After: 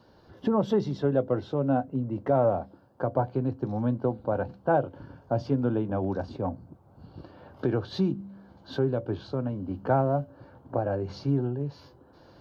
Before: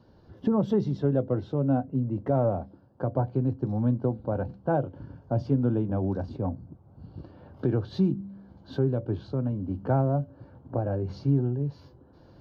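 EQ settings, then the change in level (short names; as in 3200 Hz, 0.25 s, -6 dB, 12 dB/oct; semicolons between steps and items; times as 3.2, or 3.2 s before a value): low shelf 360 Hz -11 dB; +6.0 dB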